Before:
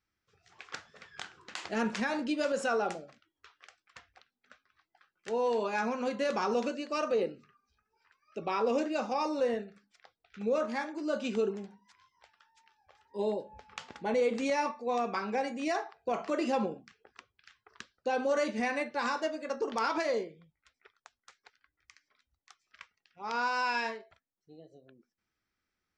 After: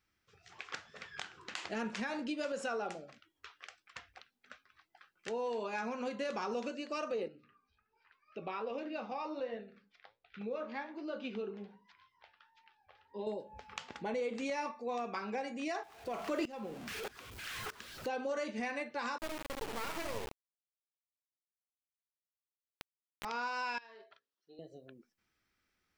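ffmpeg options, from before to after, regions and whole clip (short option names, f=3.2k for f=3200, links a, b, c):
-filter_complex "[0:a]asettb=1/sr,asplit=3[a][b][c];[a]atrim=end=7.284[d];[b]atrim=start=7.28:end=13.27,asetpts=PTS-STARTPTS,afade=t=in:d=0.004:c=qsin,afade=t=out:st=5.986:d=0.004:c=qsin,lowpass=f=4.4k:w=0.5412,lowpass=f=4.4k:w=1.3066,bandreject=f=60:t=h:w=6,bandreject=f=120:t=h:w=6,bandreject=f=180:t=h:w=6,bandreject=f=240:t=h:w=6,bandreject=f=300:t=h:w=6,bandreject=f=360:t=h:w=6,bandreject=f=420:t=h:w=6,bandreject=f=480:t=h:w=6,bandreject=f=540:t=h:w=6,flanger=delay=5.4:depth=6.2:regen=75:speed=1.3:shape=triangular[e];[c]atrim=start=13.266[f];[d][e]acrossfade=d=0.004:c1=hsin:c2=qsin[g];[g][f]acrossfade=d=0.004:c1=qsin:c2=hsin,asettb=1/sr,asplit=3[h][i][j];[h]atrim=end=15.834[k];[i]atrim=start=15.83:end=18.09,asetpts=PTS-STARTPTS,afade=t=in:d=0.004:c=qsin,afade=t=out:st=2.256:d=0.004:c=qsin,aeval=exprs='val(0)+0.5*0.00794*sgn(val(0))':c=same,acontrast=89,aeval=exprs='val(0)*pow(10,-21*if(lt(mod(-1.6*n/s,1),2*abs(-1.6)/1000),1-mod(-1.6*n/s,1)/(2*abs(-1.6)/1000),(mod(-1.6*n/s,1)-2*abs(-1.6)/1000)/(1-2*abs(-1.6)/1000))/20)':c=same[l];[j]atrim=start=18.086[m];[k][l]acrossfade=d=0.004:c1=hsin:c2=qsin[n];[n][m]acrossfade=d=0.004:c1=qsin:c2=hsin,asettb=1/sr,asplit=3[o][p][q];[o]atrim=end=19.184[r];[p]atrim=start=19.18:end=23.25,asetpts=PTS-STARTPTS,afade=t=in:d=0.004:c=qsin,afade=t=out:st=4.066:d=0.004:c=qsin,asplit=2[s][t];[t]adelay=69,lowpass=f=820:p=1,volume=-3dB,asplit=2[u][v];[v]adelay=69,lowpass=f=820:p=1,volume=0.29,asplit=2[w][x];[x]adelay=69,lowpass=f=820:p=1,volume=0.29,asplit=2[y][z];[z]adelay=69,lowpass=f=820:p=1,volume=0.29[aa];[s][u][w][y][aa]amix=inputs=5:normalize=0,atrim=end_sample=179487,adynamicsmooth=sensitivity=6:basefreq=1.3k,acrusher=bits=3:dc=4:mix=0:aa=0.000001[ab];[q]atrim=start=23.246[ac];[r][ab]acrossfade=d=0.004:c1=hsin:c2=qsin[ad];[ad][ac]acrossfade=d=0.004:c1=qsin:c2=hsin,asettb=1/sr,asplit=3[ae][af][ag];[ae]atrim=end=23.784[ah];[af]atrim=start=23.78:end=24.59,asetpts=PTS-STARTPTS,afade=t=in:d=0.004:c=qsin,afade=t=out:st=0.806:d=0.004:c=qsin,bandreject=f=60:t=h:w=6,bandreject=f=120:t=h:w=6,bandreject=f=180:t=h:w=6,bandreject=f=240:t=h:w=6,bandreject=f=300:t=h:w=6,bandreject=f=360:t=h:w=6,bandreject=f=420:t=h:w=6,bandreject=f=480:t=h:w=6,bandreject=f=540:t=h:w=6,acompressor=threshold=-44dB:ratio=12:attack=3.2:release=140:knee=1:detection=peak,highpass=420,equalizer=f=520:t=q:w=4:g=-4,equalizer=f=780:t=q:w=4:g=-7,equalizer=f=2.2k:t=q:w=4:g=-9,lowpass=f=5.1k:w=0.5412,lowpass=f=5.1k:w=1.3066[ai];[ag]atrim=start=24.586[aj];[ah][ai]acrossfade=d=0.004:c1=hsin:c2=qsin[ak];[ak][aj]acrossfade=d=0.004:c1=qsin:c2=hsin,equalizer=f=2.7k:w=1.5:g=2.5,acompressor=threshold=-47dB:ratio=2,volume=3.5dB"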